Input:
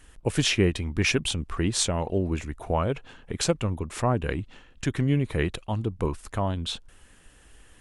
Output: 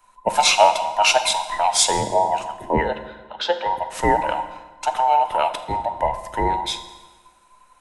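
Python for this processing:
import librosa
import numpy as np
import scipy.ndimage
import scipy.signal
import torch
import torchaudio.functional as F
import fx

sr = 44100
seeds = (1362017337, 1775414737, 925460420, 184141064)

y = fx.band_invert(x, sr, width_hz=1000)
y = fx.cabinet(y, sr, low_hz=350.0, low_slope=12, high_hz=3800.0, hz=(450.0, 670.0, 960.0, 1500.0, 2300.0, 3600.0), db=(4, -8, -7, 7, -9, 8), at=(2.81, 3.66))
y = fx.rev_fdn(y, sr, rt60_s=1.8, lf_ratio=1.1, hf_ratio=0.8, size_ms=28.0, drr_db=8.0)
y = fx.band_widen(y, sr, depth_pct=40)
y = y * librosa.db_to_amplitude(5.0)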